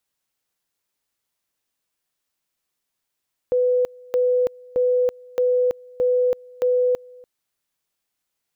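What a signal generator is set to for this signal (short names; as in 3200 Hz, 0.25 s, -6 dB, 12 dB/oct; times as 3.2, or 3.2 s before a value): two-level tone 498 Hz -15.5 dBFS, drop 25.5 dB, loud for 0.33 s, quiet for 0.29 s, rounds 6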